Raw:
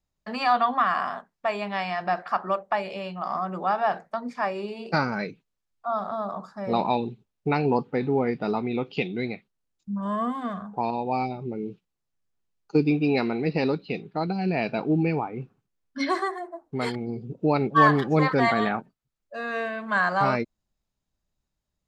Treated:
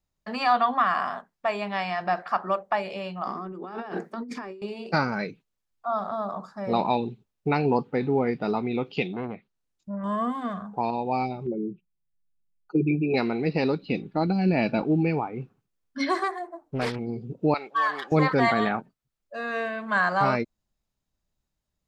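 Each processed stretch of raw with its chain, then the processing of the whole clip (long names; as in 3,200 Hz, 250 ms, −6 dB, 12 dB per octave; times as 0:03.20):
0:03.27–0:04.62: high-pass filter 220 Hz + low shelf with overshoot 490 Hz +8 dB, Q 3 + compressor whose output falls as the input rises −36 dBFS
0:09.13–0:10.04: treble cut that deepens with the level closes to 1,200 Hz, closed at −25.5 dBFS + saturating transformer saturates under 650 Hz
0:11.46–0:13.14: spectral envelope exaggerated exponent 2 + low-pass with resonance 2,500 Hz, resonance Q 2.1 + comb filter 5.5 ms, depth 79%
0:13.82–0:14.84: low-shelf EQ 240 Hz +9 dB + comb filter 3.5 ms, depth 37%
0:16.23–0:16.99: comb filter 6.8 ms, depth 31% + highs frequency-modulated by the lows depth 0.4 ms
0:17.54–0:18.12: high-pass filter 910 Hz + downward compressor 2 to 1, threshold −23 dBFS
whole clip: no processing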